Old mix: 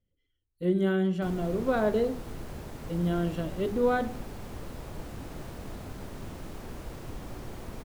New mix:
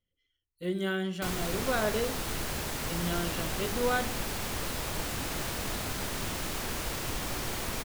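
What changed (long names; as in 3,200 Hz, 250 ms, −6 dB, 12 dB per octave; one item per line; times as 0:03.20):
background +10.0 dB
master: add tilt shelving filter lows −7.5 dB, about 1,100 Hz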